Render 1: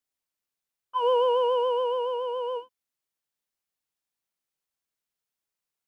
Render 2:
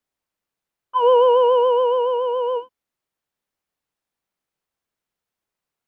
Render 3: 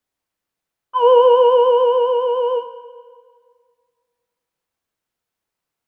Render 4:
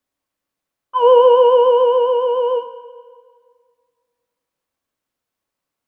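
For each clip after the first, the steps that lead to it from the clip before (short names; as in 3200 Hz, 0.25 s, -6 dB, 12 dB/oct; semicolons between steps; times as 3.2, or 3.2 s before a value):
high shelf 2700 Hz -10.5 dB; gain +9 dB
reverb RT60 1.9 s, pre-delay 5 ms, DRR 8.5 dB; gain +2 dB
small resonant body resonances 270/560/1100 Hz, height 6 dB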